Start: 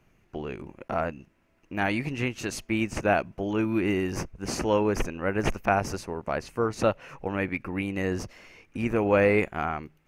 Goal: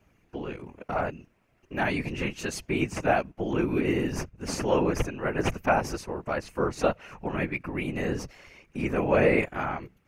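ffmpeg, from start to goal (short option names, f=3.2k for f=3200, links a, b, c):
-filter_complex "[0:a]asettb=1/sr,asplit=3[a][b][c];[a]atrim=end=2.814[d];[b]atrim=start=2.81:end=4.38,asetpts=PTS-STARTPTS,afade=t=in:d=0.004:c=qsin,afade=t=out:st=1.566:d=0.004:c=qsin,agate=range=-6dB:threshold=-36dB:ratio=16:detection=peak[e];[c]atrim=start=4.376[f];[d][e]acrossfade=d=0.004:c1=hsin:c2=qsin[g];[g][f]acrossfade=d=0.004:c1=qsin:c2=hsin,afftfilt=real='hypot(re,im)*cos(2*PI*random(0))':imag='hypot(re,im)*sin(2*PI*random(1))':win_size=512:overlap=0.75,volume=5.5dB"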